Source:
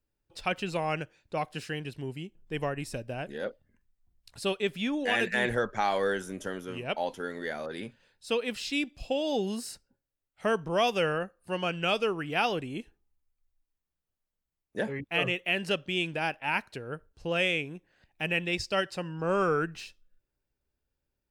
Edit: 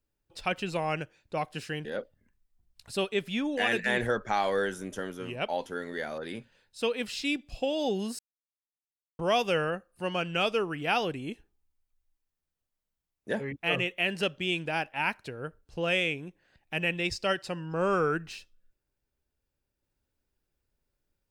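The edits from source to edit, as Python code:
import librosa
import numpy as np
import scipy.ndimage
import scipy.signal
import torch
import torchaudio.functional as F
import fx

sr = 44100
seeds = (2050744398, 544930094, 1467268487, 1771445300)

y = fx.edit(x, sr, fx.cut(start_s=1.85, length_s=1.48),
    fx.silence(start_s=9.67, length_s=1.0), tone=tone)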